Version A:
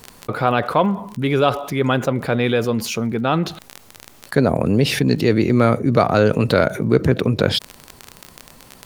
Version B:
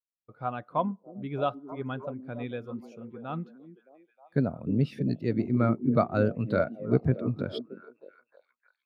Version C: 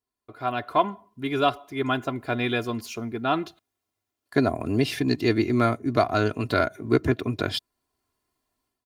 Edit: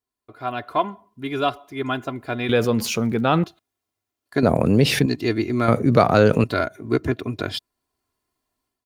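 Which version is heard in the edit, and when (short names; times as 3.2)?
C
2.49–3.44 from A
4.43–5.06 from A
5.68–6.44 from A
not used: B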